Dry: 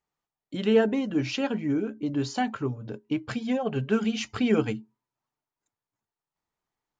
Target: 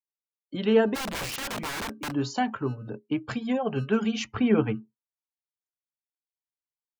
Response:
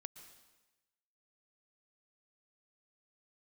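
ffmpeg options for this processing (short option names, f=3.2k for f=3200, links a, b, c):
-filter_complex "[0:a]equalizer=f=960:t=o:w=0.53:g=3.5,acrossover=split=130|710[a][b][c];[a]acrusher=samples=32:mix=1:aa=0.000001[d];[d][b][c]amix=inputs=3:normalize=0,asplit=3[e][f][g];[e]afade=t=out:st=0.94:d=0.02[h];[f]aeval=exprs='(mod(23.7*val(0)+1,2)-1)/23.7':c=same,afade=t=in:st=0.94:d=0.02,afade=t=out:st=2.1:d=0.02[i];[g]afade=t=in:st=2.1:d=0.02[j];[h][i][j]amix=inputs=3:normalize=0,asettb=1/sr,asplit=3[k][l][m];[k]atrim=end=4.244[n];[l]atrim=start=4.24:end=4.75,asetpts=PTS-STARTPTS,afade=t=in:d=0.004:c=qsin,afade=t=out:st=0.506:d=0.004:c=qsin,bass=f=250:g=3,treble=f=4k:g=-14[o];[m]atrim=start=4.746[p];[n][o]acrossfade=d=0.004:c1=hsin:c2=qsin[q];[q][p]acrossfade=d=0.004:c1=qsin:c2=hsin,afftdn=nr=25:nf=-50"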